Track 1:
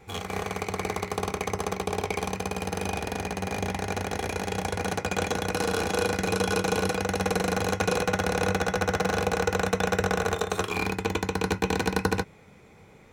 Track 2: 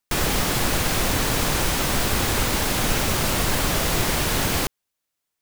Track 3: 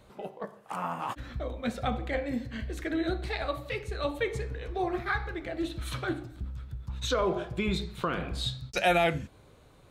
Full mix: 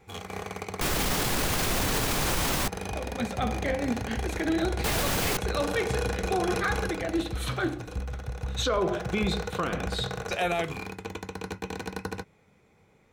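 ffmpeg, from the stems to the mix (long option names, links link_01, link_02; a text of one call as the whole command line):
ffmpeg -i stem1.wav -i stem2.wav -i stem3.wav -filter_complex "[0:a]volume=3.5dB,afade=type=out:start_time=6.72:duration=0.65:silence=0.223872,afade=type=in:start_time=8.69:duration=0.57:silence=0.375837[link_01];[1:a]adelay=700,volume=0dB,asplit=3[link_02][link_03][link_04];[link_02]atrim=end=2.68,asetpts=PTS-STARTPTS,afade=type=out:start_time=2.676:duration=0.004:curve=hsin[link_05];[link_03]atrim=start=2.68:end=4.84,asetpts=PTS-STARTPTS,volume=0[link_06];[link_04]atrim=start=4.84,asetpts=PTS-STARTPTS,afade=type=in:duration=0.004:curve=hsin[link_07];[link_05][link_06][link_07]concat=n=3:v=0:a=1[link_08];[2:a]dynaudnorm=framelen=250:gausssize=13:maxgain=12dB,adelay=1550,volume=-7.5dB[link_09];[link_01][link_08][link_09]amix=inputs=3:normalize=0,alimiter=limit=-17.5dB:level=0:latency=1:release=25" out.wav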